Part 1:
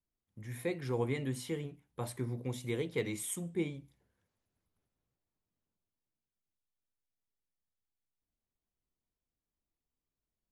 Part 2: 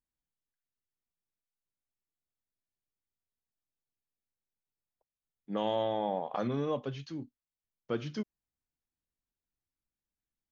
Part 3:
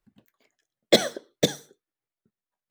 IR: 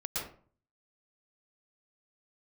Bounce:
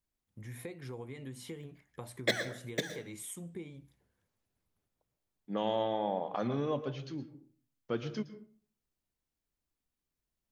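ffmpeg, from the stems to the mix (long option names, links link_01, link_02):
-filter_complex "[0:a]acompressor=threshold=-41dB:ratio=8,volume=0.5dB,asplit=2[link_01][link_02];[1:a]volume=-2dB,asplit=2[link_03][link_04];[link_04]volume=-14.5dB[link_05];[2:a]equalizer=frequency=1800:width=2:gain=14,adelay=1350,volume=-8.5dB,asplit=2[link_06][link_07];[link_07]volume=-19.5dB[link_08];[link_02]apad=whole_len=178631[link_09];[link_06][link_09]sidechaincompress=threshold=-49dB:ratio=5:attack=5.5:release=137[link_10];[3:a]atrim=start_sample=2205[link_11];[link_05][link_08]amix=inputs=2:normalize=0[link_12];[link_12][link_11]afir=irnorm=-1:irlink=0[link_13];[link_01][link_03][link_10][link_13]amix=inputs=4:normalize=0"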